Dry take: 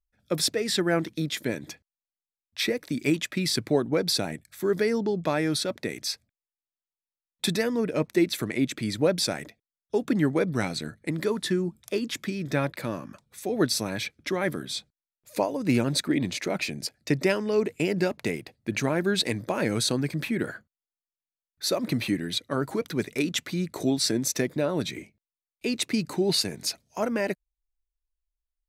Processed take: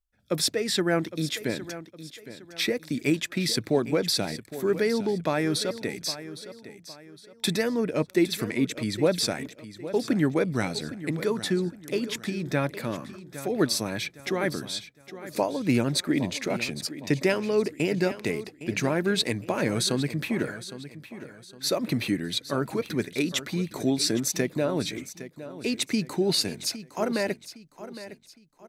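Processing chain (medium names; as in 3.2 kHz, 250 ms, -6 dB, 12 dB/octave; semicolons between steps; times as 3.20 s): feedback delay 811 ms, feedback 36%, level -14 dB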